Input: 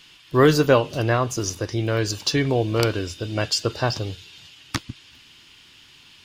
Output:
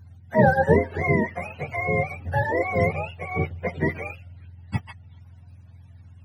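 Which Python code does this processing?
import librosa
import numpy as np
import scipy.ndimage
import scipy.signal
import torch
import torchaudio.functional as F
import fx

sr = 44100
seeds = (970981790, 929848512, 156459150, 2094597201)

y = fx.octave_mirror(x, sr, pivot_hz=490.0)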